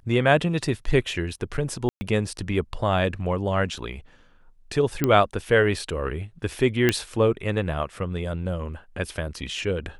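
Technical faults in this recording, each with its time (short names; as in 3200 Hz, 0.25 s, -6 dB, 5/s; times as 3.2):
1.89–2.01 gap 0.12 s
5.04 pop -8 dBFS
6.89 pop -6 dBFS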